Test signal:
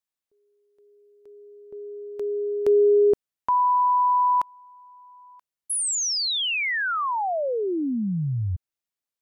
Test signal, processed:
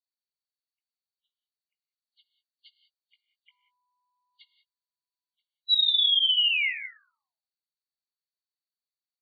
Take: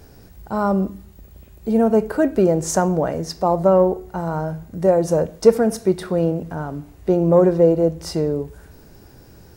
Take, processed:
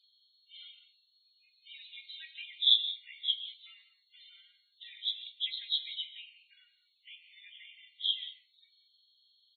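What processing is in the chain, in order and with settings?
knee-point frequency compression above 2.8 kHz 4:1; Chebyshev high-pass 2.1 kHz, order 6; spectral noise reduction 14 dB; loudest bins only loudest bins 32; doubling 18 ms -10.5 dB; gated-style reverb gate 210 ms rising, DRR 11 dB

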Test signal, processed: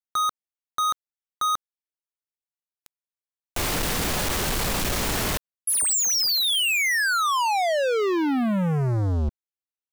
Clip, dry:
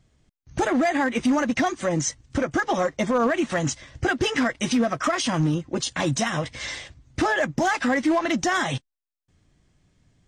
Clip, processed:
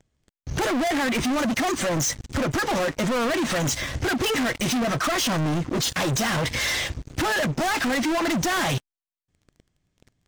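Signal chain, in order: waveshaping leveller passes 5; peak limiter -21.5 dBFS

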